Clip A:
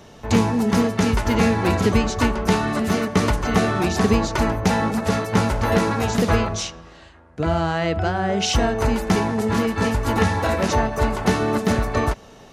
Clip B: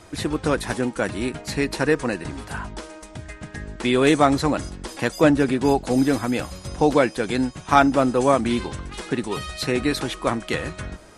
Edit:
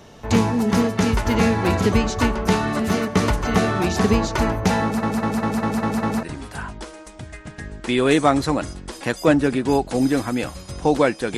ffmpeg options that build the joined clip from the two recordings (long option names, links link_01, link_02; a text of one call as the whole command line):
ffmpeg -i cue0.wav -i cue1.wav -filter_complex "[0:a]apad=whole_dur=11.37,atrim=end=11.37,asplit=7[link_01][link_02][link_03][link_04][link_05][link_06][link_07];[link_01]atrim=end=5.032[link_08];[link_02]atrim=start=4.828:end=5.032[link_09];[link_03]atrim=start=4.828:end=5.032[link_10];[link_04]atrim=start=4.828:end=5.032[link_11];[link_05]atrim=start=4.828:end=5.032[link_12];[link_06]atrim=start=4.828:end=5.032[link_13];[link_07]atrim=start=4.828:end=5.032[link_14];[1:a]atrim=start=2.188:end=7.33[link_15];[link_08][link_09]acrossfade=duration=0.004:curve1=hsin:curve2=hsin[link_16];[link_16][link_10]acrossfade=duration=0.004:curve1=hsin:curve2=hsin[link_17];[link_17][link_11]acrossfade=duration=0.004:curve1=hsin:curve2=hsin[link_18];[link_18][link_12]acrossfade=duration=0.004:curve1=hsin:curve2=hsin[link_19];[link_19][link_13]acrossfade=duration=0.004:curve1=hsin:curve2=hsin[link_20];[link_20][link_14]acrossfade=duration=0.004:curve1=hsin:curve2=hsin[link_21];[link_21][link_15]acrossfade=duration=0.004:curve1=hsin:curve2=hsin" out.wav